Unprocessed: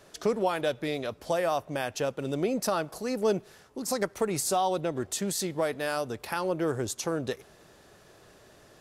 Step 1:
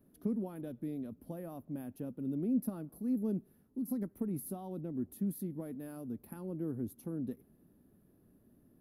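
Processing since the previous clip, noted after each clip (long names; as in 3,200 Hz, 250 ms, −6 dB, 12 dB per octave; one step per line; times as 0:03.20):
drawn EQ curve 130 Hz 0 dB, 250 Hz +10 dB, 400 Hz −7 dB, 620 Hz −14 dB, 7,900 Hz −29 dB, 11,000 Hz 0 dB
level −7.5 dB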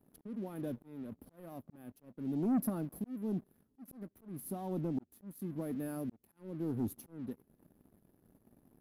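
volume swells 542 ms
leveller curve on the samples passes 2
level −2 dB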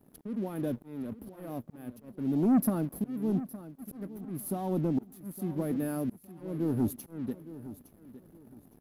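repeating echo 863 ms, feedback 28%, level −15 dB
level +7 dB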